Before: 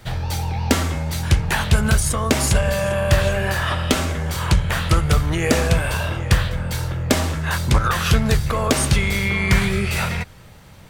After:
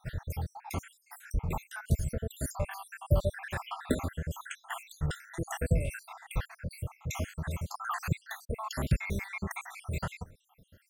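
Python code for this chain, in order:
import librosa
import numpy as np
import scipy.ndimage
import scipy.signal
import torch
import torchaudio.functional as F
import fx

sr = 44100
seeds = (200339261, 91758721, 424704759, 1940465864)

y = fx.spec_dropout(x, sr, seeds[0], share_pct=73)
y = fx.peak_eq(y, sr, hz=4100.0, db=fx.steps((0.0, -5.5), (0.57, -14.0), (2.53, -7.5)), octaves=1.7)
y = y * librosa.db_to_amplitude(-8.5)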